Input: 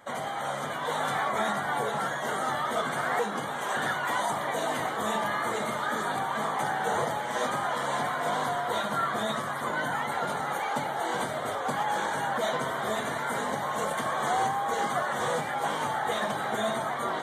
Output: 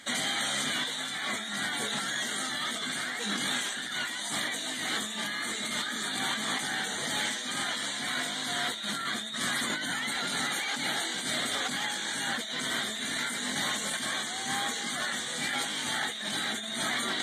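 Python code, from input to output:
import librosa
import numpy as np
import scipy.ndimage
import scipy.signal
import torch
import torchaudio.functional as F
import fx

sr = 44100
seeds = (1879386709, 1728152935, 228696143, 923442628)

y = fx.graphic_eq(x, sr, hz=(125, 250, 500, 1000, 2000, 4000, 8000), db=(-9, 8, -9, -11, 6, 12, 10))
y = fx.over_compress(y, sr, threshold_db=-33.0, ratio=-1.0)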